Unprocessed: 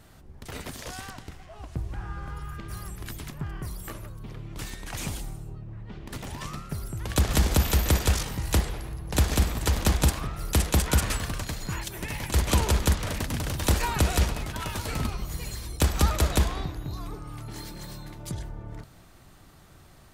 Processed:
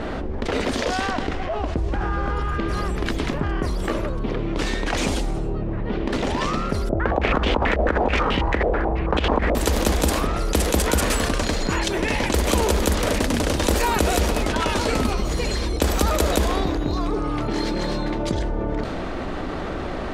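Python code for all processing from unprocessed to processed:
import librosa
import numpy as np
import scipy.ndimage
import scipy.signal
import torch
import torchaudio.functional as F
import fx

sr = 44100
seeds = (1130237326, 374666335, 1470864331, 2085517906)

y = fx.chain(x, sr, fx.over_compress(threshold_db=-24.0, ratio=-0.5),
    fx.filter_held_lowpass(hz=9.2, low_hz=640.0, high_hz=3000.0), at=(6.89, 9.55))
y = fx.graphic_eq(y, sr, hz=(125, 250, 500), db=(-11, 6, 7))
y = fx.env_lowpass(y, sr, base_hz=2600.0, full_db=-22.5)
y = fx.env_flatten(y, sr, amount_pct=70)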